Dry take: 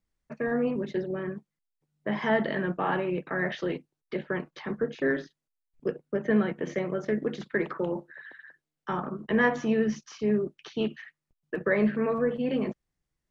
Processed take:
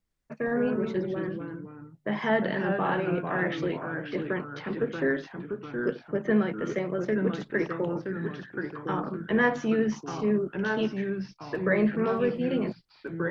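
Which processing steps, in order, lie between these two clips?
echoes that change speed 0.105 s, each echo -2 st, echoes 2, each echo -6 dB

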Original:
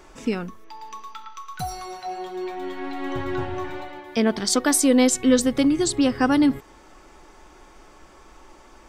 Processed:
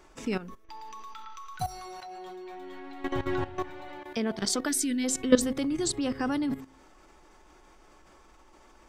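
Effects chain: spectral gain 4.69–5.04, 400–1400 Hz -18 dB; de-hum 132.6 Hz, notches 5; level quantiser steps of 14 dB

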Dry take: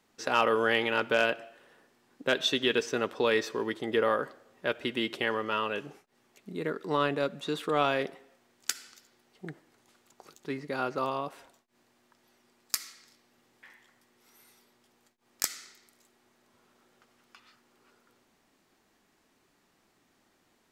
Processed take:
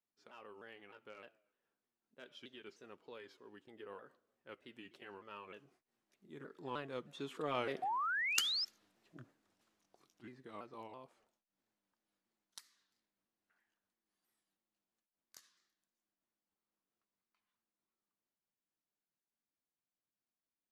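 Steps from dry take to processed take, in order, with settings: repeated pitch sweeps -3.5 st, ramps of 0.319 s; Doppler pass-by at 8.29, 13 m/s, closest 5.8 m; painted sound rise, 7.82–8.65, 720–5400 Hz -33 dBFS; gain -3.5 dB

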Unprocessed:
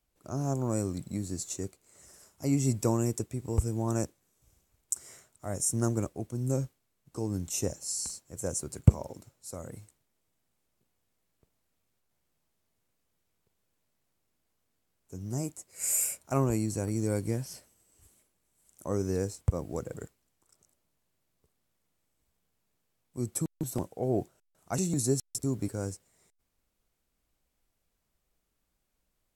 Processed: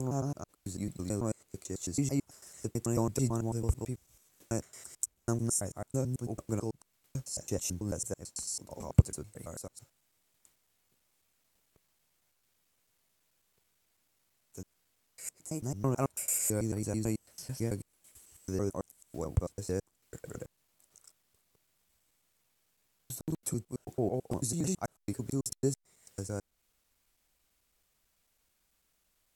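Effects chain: slices in reverse order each 0.11 s, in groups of 6; mismatched tape noise reduction encoder only; gain -2.5 dB

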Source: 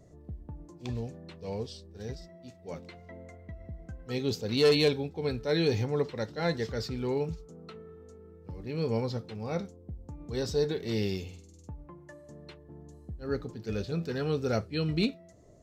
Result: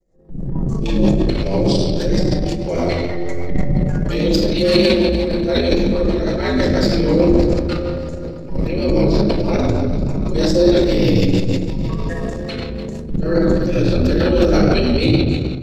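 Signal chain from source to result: on a send: split-band echo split 440 Hz, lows 0.101 s, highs 0.293 s, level -14 dB; on the sum: expander -45 dBFS; ring modulator 87 Hz; reverb RT60 1.1 s, pre-delay 4 ms, DRR -6 dB; in parallel at +1 dB: compressor, threshold -30 dBFS, peak gain reduction 17.5 dB; on the sum: rotary speaker horn 6.3 Hz; AGC gain up to 15 dB; transient shaper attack -5 dB, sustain +11 dB; de-hum 71.38 Hz, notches 36; gain -1.5 dB

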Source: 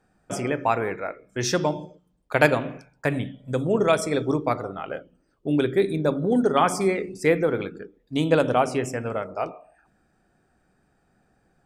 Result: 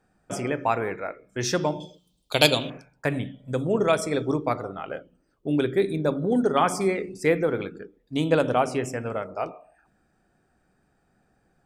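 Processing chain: 1.8–2.7 resonant high shelf 2500 Hz +12 dB, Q 3; gain -1.5 dB

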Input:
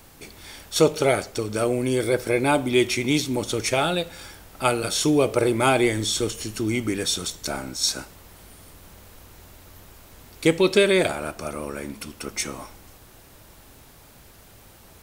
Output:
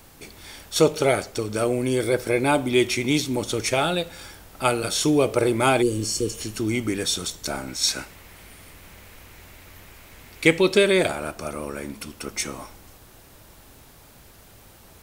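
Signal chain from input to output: 5.84–6.32 spectral repair 550–4200 Hz after; 7.68–10.6 bell 2200 Hz +8.5 dB 0.87 oct

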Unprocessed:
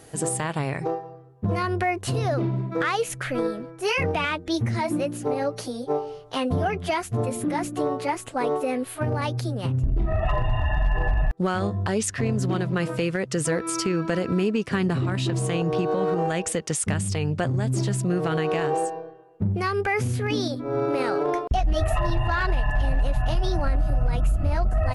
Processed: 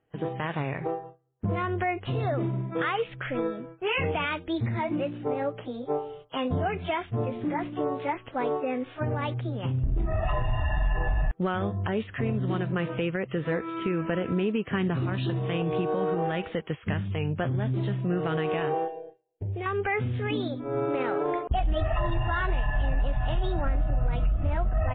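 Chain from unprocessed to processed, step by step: gate with hold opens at -27 dBFS; 18.88–19.66 fixed phaser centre 510 Hz, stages 4; gain -3 dB; MP3 16 kbps 8000 Hz

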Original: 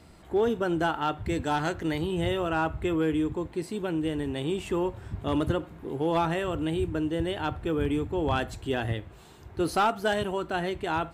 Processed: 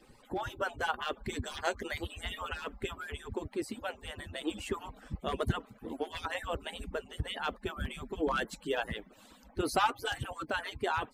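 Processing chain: median-filter separation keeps percussive

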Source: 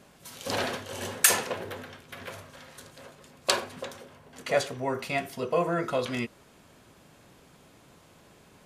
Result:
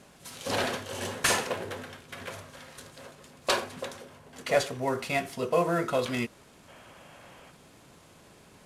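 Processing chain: CVSD 64 kbps; spectral gain 6.68–7.51, 490–3400 Hz +7 dB; gain +1 dB

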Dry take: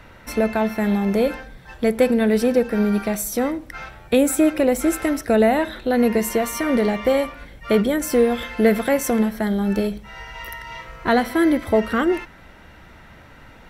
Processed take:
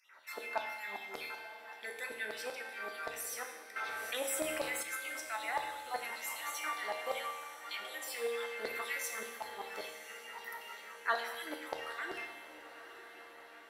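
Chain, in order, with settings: random spectral dropouts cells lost 25%; bell 430 Hz +2.5 dB 0.85 oct; resonator 390 Hz, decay 0.27 s, harmonics odd, mix 70%; LFO high-pass saw down 5.2 Hz 760–4700 Hz; resonator 78 Hz, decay 1.1 s, harmonics all, mix 80%; on a send: diffused feedback echo 0.964 s, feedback 57%, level -12.5 dB; on the sum: FDN reverb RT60 0.86 s, low-frequency decay 1.3×, high-frequency decay 0.85×, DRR 7.5 dB; 3.76–4.83 fast leveller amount 50%; gain +7 dB

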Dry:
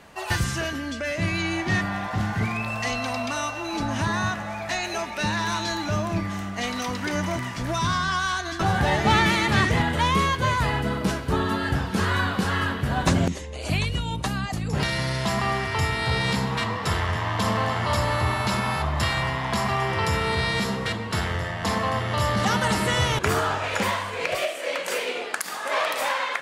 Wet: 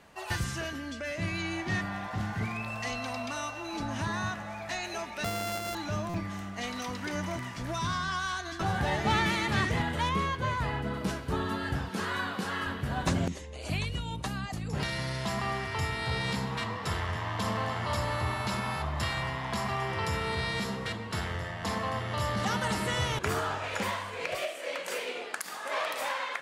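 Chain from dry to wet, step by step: 5.24–5.75 sample sorter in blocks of 64 samples; 10.09–10.94 high shelf 4100 Hz -8 dB; 11.89–12.67 Bessel high-pass 190 Hz, order 2; stuck buffer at 6.09, samples 256, times 8; gain -7.5 dB

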